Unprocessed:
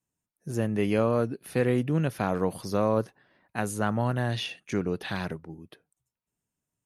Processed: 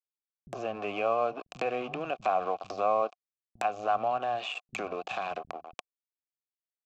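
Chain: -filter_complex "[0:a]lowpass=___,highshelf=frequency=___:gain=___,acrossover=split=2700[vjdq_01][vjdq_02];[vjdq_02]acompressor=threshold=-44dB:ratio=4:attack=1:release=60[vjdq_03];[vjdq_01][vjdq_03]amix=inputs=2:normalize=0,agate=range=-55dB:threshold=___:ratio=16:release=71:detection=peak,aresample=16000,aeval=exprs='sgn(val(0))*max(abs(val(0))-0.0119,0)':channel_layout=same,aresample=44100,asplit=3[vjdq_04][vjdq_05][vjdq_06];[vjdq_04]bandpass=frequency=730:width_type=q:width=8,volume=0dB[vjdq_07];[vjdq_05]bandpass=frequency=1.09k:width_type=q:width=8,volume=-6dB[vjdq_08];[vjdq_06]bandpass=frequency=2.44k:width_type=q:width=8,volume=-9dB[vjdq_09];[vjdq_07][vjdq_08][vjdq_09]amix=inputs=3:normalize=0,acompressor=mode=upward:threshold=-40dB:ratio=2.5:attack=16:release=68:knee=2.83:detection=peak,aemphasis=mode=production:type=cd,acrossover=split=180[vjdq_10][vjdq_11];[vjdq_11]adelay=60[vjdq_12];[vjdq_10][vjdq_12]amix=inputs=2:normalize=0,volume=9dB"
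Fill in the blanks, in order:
4.1k, 2.3k, 9, -52dB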